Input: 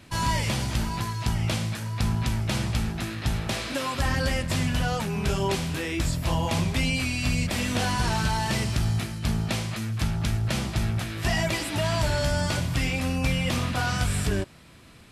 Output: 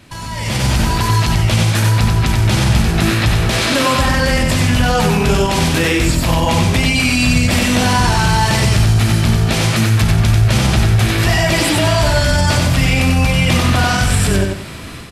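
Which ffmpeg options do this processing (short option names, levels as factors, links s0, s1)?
-filter_complex "[0:a]alimiter=level_in=1.33:limit=0.0631:level=0:latency=1:release=75,volume=0.75,dynaudnorm=f=340:g=3:m=5.01,asplit=2[s0][s1];[s1]aecho=0:1:93|186|279|372:0.668|0.194|0.0562|0.0163[s2];[s0][s2]amix=inputs=2:normalize=0,volume=1.88"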